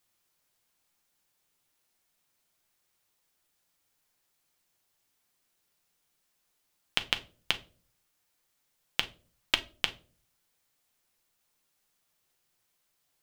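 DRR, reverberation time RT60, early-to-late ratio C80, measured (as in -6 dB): 7.0 dB, not exponential, 23.5 dB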